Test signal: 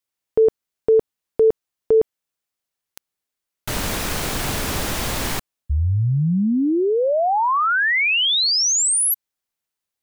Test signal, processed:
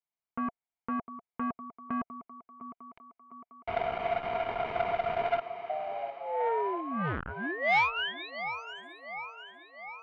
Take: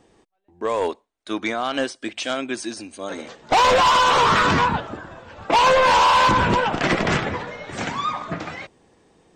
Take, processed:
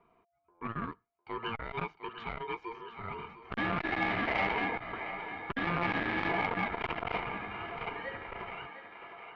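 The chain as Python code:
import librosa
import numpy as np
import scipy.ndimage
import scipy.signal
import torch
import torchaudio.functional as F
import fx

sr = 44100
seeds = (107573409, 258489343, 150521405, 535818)

p1 = fx.fixed_phaser(x, sr, hz=340.0, stages=4)
p2 = fx.over_compress(p1, sr, threshold_db=-22.0, ratio=-0.5)
p3 = p1 + (p2 * librosa.db_to_amplitude(-3.0))
p4 = scipy.signal.sosfilt(scipy.signal.butter(4, 1700.0, 'lowpass', fs=sr, output='sos'), p3)
p5 = fx.peak_eq(p4, sr, hz=86.0, db=-15.0, octaves=1.3)
p6 = p5 + 0.72 * np.pad(p5, (int(1.3 * sr / 1000.0), 0))[:len(p5)]
p7 = p6 * np.sin(2.0 * np.pi * 690.0 * np.arange(len(p6)) / sr)
p8 = p7 + fx.echo_thinned(p7, sr, ms=705, feedback_pct=63, hz=250.0, wet_db=-12.0, dry=0)
p9 = fx.transformer_sat(p8, sr, knee_hz=1000.0)
y = p9 * librosa.db_to_amplitude(-5.5)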